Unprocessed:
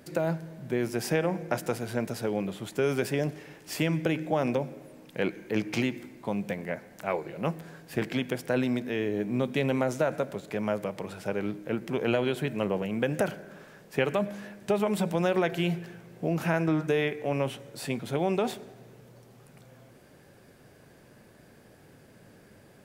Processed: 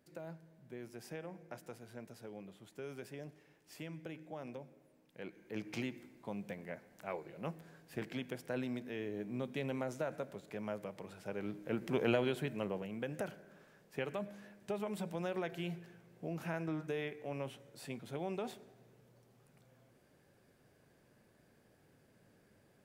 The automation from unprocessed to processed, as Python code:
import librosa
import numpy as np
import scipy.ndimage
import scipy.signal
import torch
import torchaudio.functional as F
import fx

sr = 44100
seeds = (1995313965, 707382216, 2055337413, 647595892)

y = fx.gain(x, sr, db=fx.line((5.18, -19.5), (5.7, -12.0), (11.25, -12.0), (11.97, -4.0), (12.99, -13.0)))